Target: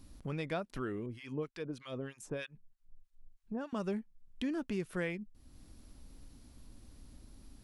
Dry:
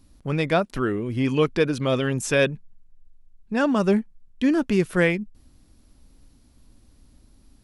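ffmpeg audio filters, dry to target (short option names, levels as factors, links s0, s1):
-filter_complex "[0:a]acompressor=threshold=0.00447:ratio=2,asettb=1/sr,asplit=3[s0][s1][s2];[s0]atrim=end=1.064[s3];[s1]atrim=start=1.06:end=3.73,asetpts=PTS-STARTPTS,afade=t=in:d=0.004:c=qsin,afade=t=out:st=2.666:d=0.004:c=qsin,acrossover=split=1100[s4][s5];[s4]aeval=exprs='val(0)*(1-1/2+1/2*cos(2*PI*3.2*n/s))':c=same[s6];[s5]aeval=exprs='val(0)*(1-1/2-1/2*cos(2*PI*3.2*n/s))':c=same[s7];[s6][s7]amix=inputs=2:normalize=0[s8];[s2]atrim=start=3.726[s9];[s3][s8]acrossfade=d=0.004:c1=hsin:c2=qsin[s10];[s10][s9]acrossfade=d=0.004:c1=qsin:c2=hsin"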